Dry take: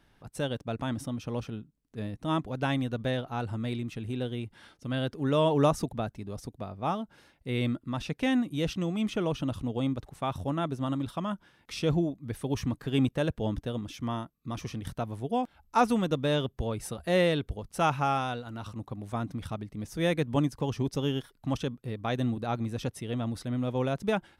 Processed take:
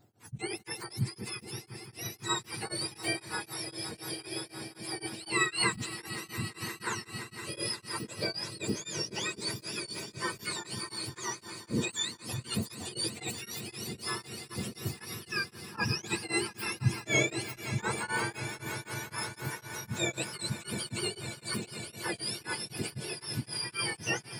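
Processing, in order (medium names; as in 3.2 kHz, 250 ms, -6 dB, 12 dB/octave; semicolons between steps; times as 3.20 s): spectrum inverted on a logarithmic axis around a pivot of 1.1 kHz; bass shelf 280 Hz +7 dB; on a send: echo with a slow build-up 173 ms, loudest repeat 5, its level -16 dB; on the sum: tremolo of two beating tones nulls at 3.9 Hz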